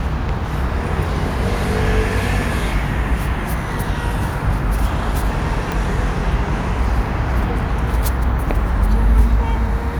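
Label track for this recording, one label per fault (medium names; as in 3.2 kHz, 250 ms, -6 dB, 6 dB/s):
5.720000	5.720000	pop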